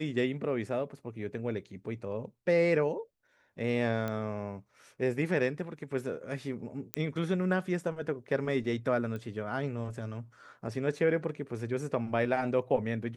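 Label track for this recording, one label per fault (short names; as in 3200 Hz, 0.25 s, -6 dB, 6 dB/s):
4.080000	4.080000	pop -21 dBFS
6.940000	6.940000	pop -14 dBFS
9.160000	9.160000	pop -28 dBFS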